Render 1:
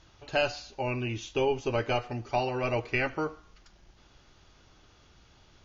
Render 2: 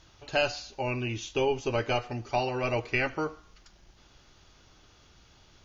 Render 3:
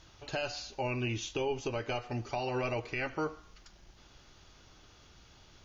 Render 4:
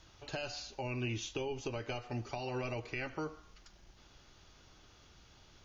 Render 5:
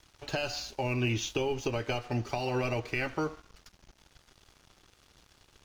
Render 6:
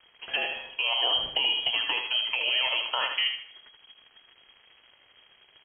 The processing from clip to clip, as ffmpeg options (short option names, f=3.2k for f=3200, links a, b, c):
-af "highshelf=f=4.1k:g=5"
-af "alimiter=limit=-24dB:level=0:latency=1:release=212"
-filter_complex "[0:a]acrossover=split=320|3000[a][b][c];[b]acompressor=threshold=-36dB:ratio=6[d];[a][d][c]amix=inputs=3:normalize=0,volume=-2.5dB"
-af "aeval=exprs='sgn(val(0))*max(abs(val(0))-0.00106,0)':c=same,volume=8dB"
-filter_complex "[0:a]asplit=2[a][b];[b]aecho=0:1:78|156|234|312:0.501|0.17|0.0579|0.0197[c];[a][c]amix=inputs=2:normalize=0,lowpass=f=2.8k:t=q:w=0.5098,lowpass=f=2.8k:t=q:w=0.6013,lowpass=f=2.8k:t=q:w=0.9,lowpass=f=2.8k:t=q:w=2.563,afreqshift=-3300,volume=3.5dB"